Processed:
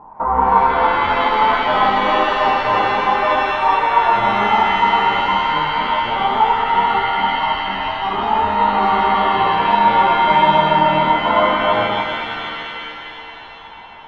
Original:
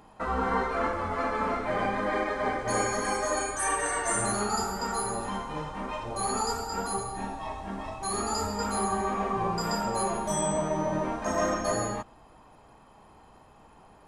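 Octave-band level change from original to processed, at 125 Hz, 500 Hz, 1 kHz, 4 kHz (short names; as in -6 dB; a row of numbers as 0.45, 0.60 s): +6.5, +9.5, +17.5, +17.0 dB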